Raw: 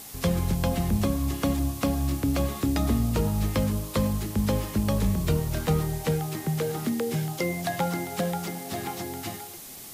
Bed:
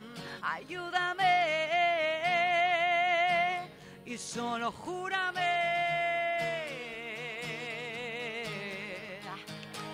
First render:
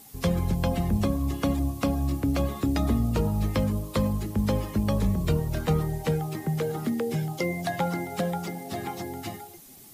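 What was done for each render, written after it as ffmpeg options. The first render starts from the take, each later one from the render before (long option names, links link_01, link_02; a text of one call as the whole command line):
ffmpeg -i in.wav -af "afftdn=noise_reduction=10:noise_floor=-42" out.wav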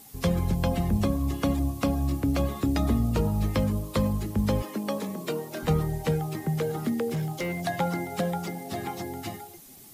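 ffmpeg -i in.wav -filter_complex "[0:a]asettb=1/sr,asplit=3[link_01][link_02][link_03];[link_01]atrim=end=4.624[link_04];[link_02]atrim=start=4.62:end=5.63,asetpts=PTS-STARTPTS,afade=type=in:duration=0.004:curve=qsin,afade=type=out:start_time=1.006:duration=0.004:curve=qsin,highpass=frequency=230:width=0.5412,highpass=frequency=230:width=1.3066[link_05];[link_03]atrim=start=5.626[link_06];[link_04][link_05]acrossfade=duration=0.004:curve1=hsin:curve2=qsin[link_07];[link_07][link_06]acrossfade=duration=0.004:curve1=qsin:curve2=hsin,asettb=1/sr,asplit=3[link_08][link_09][link_10];[link_08]atrim=end=7.084[link_11];[link_09]atrim=start=7.08:end=7.61,asetpts=PTS-STARTPTS,afade=type=in:duration=0.004:curve=qsin,afade=type=out:start_time=0.526:duration=0.004:curve=qsin,volume=25.5dB,asoftclip=hard,volume=-25.5dB[link_12];[link_10]atrim=start=7.606[link_13];[link_11][link_12]acrossfade=duration=0.004:curve1=hsin:curve2=qsin[link_14];[link_14][link_13]acrossfade=duration=0.004:curve1=qsin:curve2=hsin" out.wav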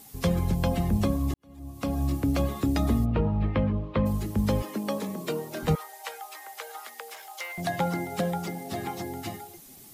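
ffmpeg -i in.wav -filter_complex "[0:a]asplit=3[link_01][link_02][link_03];[link_01]afade=type=out:start_time=3.04:duration=0.02[link_04];[link_02]lowpass=frequency=2900:width=0.5412,lowpass=frequency=2900:width=1.3066,afade=type=in:start_time=3.04:duration=0.02,afade=type=out:start_time=4.05:duration=0.02[link_05];[link_03]afade=type=in:start_time=4.05:duration=0.02[link_06];[link_04][link_05][link_06]amix=inputs=3:normalize=0,asettb=1/sr,asplit=3[link_07][link_08][link_09];[link_07]atrim=end=5.754[link_10];[link_08]atrim=start=5.75:end=7.58,asetpts=PTS-STARTPTS,afade=type=in:duration=0.004:curve=qsin,afade=type=out:start_time=1.826:duration=0.004:curve=qsin,highpass=frequency=760:width=0.5412,highpass=frequency=760:width=1.3066[link_11];[link_09]atrim=start=7.576[link_12];[link_10][link_11]acrossfade=duration=0.004:curve1=hsin:curve2=qsin[link_13];[link_13][link_12]acrossfade=duration=0.004:curve1=qsin:curve2=hsin,asplit=2[link_14][link_15];[link_14]atrim=end=1.34,asetpts=PTS-STARTPTS,afade=type=out:start_time=1.336:duration=0.004:curve=hsin[link_16];[link_15]atrim=start=1.34,asetpts=PTS-STARTPTS,afade=type=in:duration=0.67:curve=qua[link_17];[link_16][link_17]concat=n=2:v=0:a=1" out.wav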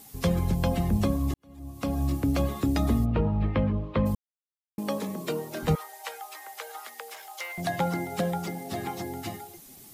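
ffmpeg -i in.wav -filter_complex "[0:a]asplit=3[link_01][link_02][link_03];[link_01]atrim=end=4.15,asetpts=PTS-STARTPTS,afade=type=out:start_time=4.146:duration=0.004:curve=hsin[link_04];[link_02]atrim=start=4.15:end=4.78,asetpts=PTS-STARTPTS,volume=0[link_05];[link_03]atrim=start=4.78,asetpts=PTS-STARTPTS,afade=type=in:duration=0.004:curve=hsin[link_06];[link_04][link_05][link_06]concat=n=3:v=0:a=1" out.wav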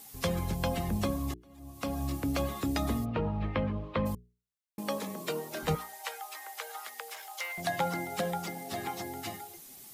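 ffmpeg -i in.wav -af "lowshelf=frequency=460:gain=-7.5,bandreject=frequency=60:width_type=h:width=6,bandreject=frequency=120:width_type=h:width=6,bandreject=frequency=180:width_type=h:width=6,bandreject=frequency=240:width_type=h:width=6,bandreject=frequency=300:width_type=h:width=6,bandreject=frequency=360:width_type=h:width=6,bandreject=frequency=420:width_type=h:width=6" out.wav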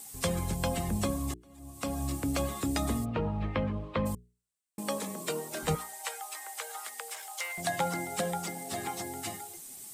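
ffmpeg -i in.wav -af "equalizer=frequency=8300:width=2.2:gain=11" out.wav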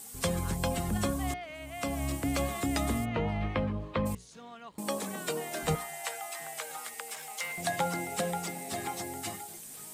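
ffmpeg -i in.wav -i bed.wav -filter_complex "[1:a]volume=-14dB[link_01];[0:a][link_01]amix=inputs=2:normalize=0" out.wav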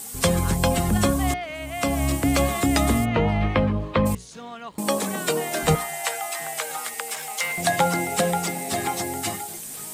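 ffmpeg -i in.wav -af "volume=10dB" out.wav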